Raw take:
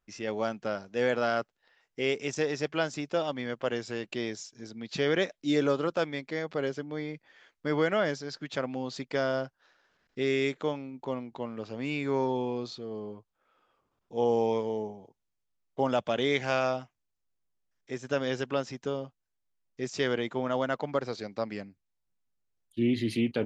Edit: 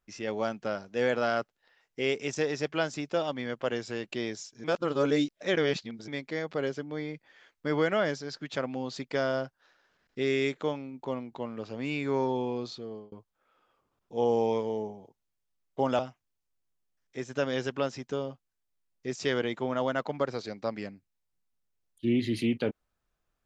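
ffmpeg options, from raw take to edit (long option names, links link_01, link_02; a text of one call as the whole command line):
ffmpeg -i in.wav -filter_complex "[0:a]asplit=5[link_01][link_02][link_03][link_04][link_05];[link_01]atrim=end=4.642[link_06];[link_02]atrim=start=4.638:end=6.082,asetpts=PTS-STARTPTS,areverse[link_07];[link_03]atrim=start=6.078:end=13.12,asetpts=PTS-STARTPTS,afade=type=out:start_time=6.672:duration=0.37:curve=qsin[link_08];[link_04]atrim=start=13.12:end=15.992,asetpts=PTS-STARTPTS,afade=type=in:duration=0.004:curve=hsin[link_09];[link_05]atrim=start=16.728[link_10];[link_06][link_07]acrossfade=duration=0.004:curve1=hsin:curve2=hsin[link_11];[link_08][link_09]concat=n=2:v=0:a=1[link_12];[link_11][link_12]acrossfade=duration=0.004:curve1=hsin:curve2=hsin[link_13];[link_13][link_10]acrossfade=duration=0.004:curve1=hsin:curve2=hsin" out.wav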